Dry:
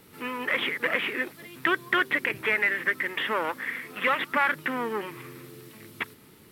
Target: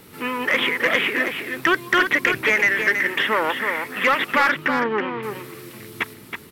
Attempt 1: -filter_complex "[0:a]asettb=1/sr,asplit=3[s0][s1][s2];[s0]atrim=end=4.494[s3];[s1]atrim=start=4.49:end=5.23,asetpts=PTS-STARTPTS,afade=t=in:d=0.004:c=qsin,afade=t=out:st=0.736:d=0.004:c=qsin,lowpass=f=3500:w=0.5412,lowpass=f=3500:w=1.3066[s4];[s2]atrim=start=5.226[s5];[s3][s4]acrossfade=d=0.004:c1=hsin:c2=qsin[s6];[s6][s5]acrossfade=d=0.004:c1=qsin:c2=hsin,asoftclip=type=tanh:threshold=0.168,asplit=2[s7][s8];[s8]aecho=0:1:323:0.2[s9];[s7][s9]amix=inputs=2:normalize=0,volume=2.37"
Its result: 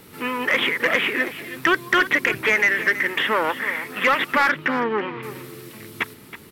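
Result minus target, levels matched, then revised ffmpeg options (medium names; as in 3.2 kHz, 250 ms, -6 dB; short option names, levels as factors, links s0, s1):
echo-to-direct -7 dB
-filter_complex "[0:a]asettb=1/sr,asplit=3[s0][s1][s2];[s0]atrim=end=4.494[s3];[s1]atrim=start=4.49:end=5.23,asetpts=PTS-STARTPTS,afade=t=in:d=0.004:c=qsin,afade=t=out:st=0.736:d=0.004:c=qsin,lowpass=f=3500:w=0.5412,lowpass=f=3500:w=1.3066[s4];[s2]atrim=start=5.226[s5];[s3][s4]acrossfade=d=0.004:c1=hsin:c2=qsin[s6];[s6][s5]acrossfade=d=0.004:c1=qsin:c2=hsin,asoftclip=type=tanh:threshold=0.168,asplit=2[s7][s8];[s8]aecho=0:1:323:0.447[s9];[s7][s9]amix=inputs=2:normalize=0,volume=2.37"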